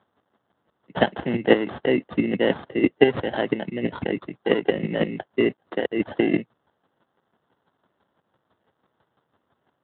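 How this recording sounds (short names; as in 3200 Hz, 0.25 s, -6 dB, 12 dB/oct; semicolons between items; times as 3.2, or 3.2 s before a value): a quantiser's noise floor 12-bit, dither triangular; chopped level 6 Hz, depth 60%, duty 20%; aliases and images of a low sample rate 2400 Hz, jitter 0%; Speex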